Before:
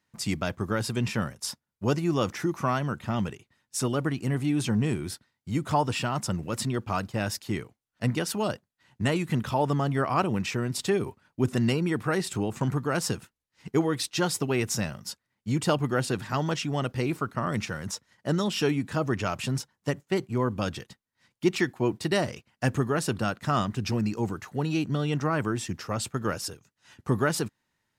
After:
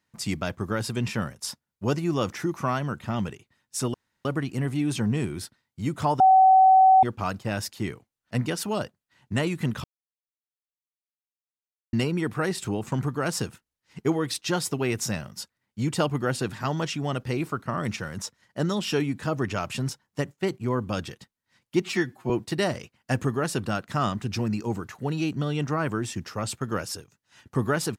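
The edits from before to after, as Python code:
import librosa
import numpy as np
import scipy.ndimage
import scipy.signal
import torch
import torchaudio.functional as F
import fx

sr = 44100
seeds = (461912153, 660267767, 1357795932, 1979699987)

y = fx.edit(x, sr, fx.insert_room_tone(at_s=3.94, length_s=0.31),
    fx.bleep(start_s=5.89, length_s=0.83, hz=759.0, db=-12.0),
    fx.silence(start_s=9.53, length_s=2.09),
    fx.stretch_span(start_s=21.51, length_s=0.32, factor=1.5), tone=tone)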